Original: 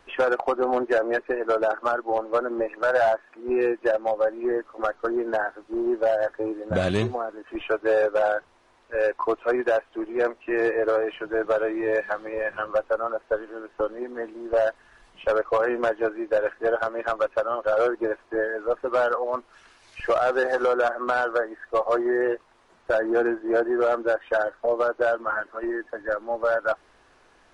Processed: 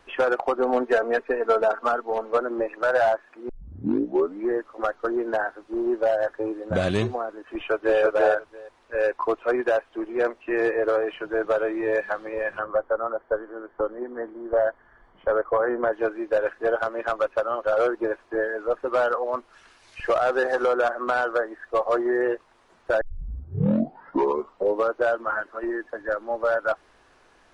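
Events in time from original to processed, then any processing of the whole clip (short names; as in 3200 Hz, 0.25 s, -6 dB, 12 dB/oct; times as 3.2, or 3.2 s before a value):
0.58–2.37 comb 4.4 ms
3.49 tape start 1.00 s
7.49–8 echo throw 0.34 s, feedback 10%, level -1 dB
12.59–15.93 polynomial smoothing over 41 samples
23.01 tape start 1.94 s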